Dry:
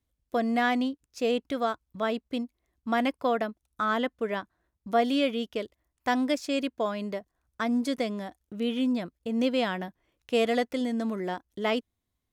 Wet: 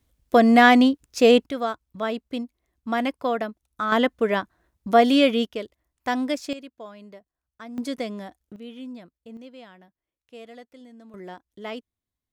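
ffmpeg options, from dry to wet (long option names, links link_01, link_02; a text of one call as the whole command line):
ffmpeg -i in.wav -af "asetnsamples=nb_out_samples=441:pad=0,asendcmd='1.46 volume volume 1.5dB;3.92 volume volume 8dB;5.45 volume volume 1dB;6.53 volume volume -11.5dB;7.78 volume volume -0.5dB;8.56 volume volume -11dB;9.37 volume volume -18dB;11.14 volume volume -7dB',volume=11.5dB" out.wav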